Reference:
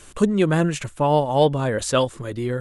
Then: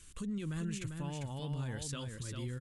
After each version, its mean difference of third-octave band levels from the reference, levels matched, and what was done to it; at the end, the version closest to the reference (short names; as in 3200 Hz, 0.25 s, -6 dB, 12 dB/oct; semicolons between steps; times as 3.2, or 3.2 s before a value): 7.0 dB: passive tone stack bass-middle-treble 6-0-2; limiter -36.5 dBFS, peak gain reduction 11.5 dB; echo 0.397 s -5.5 dB; gain +4.5 dB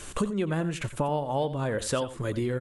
5.0 dB: dynamic EQ 6400 Hz, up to -6 dB, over -42 dBFS, Q 1.1; compressor 6:1, threshold -30 dBFS, peak gain reduction 17 dB; echo 88 ms -14 dB; gain +4 dB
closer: second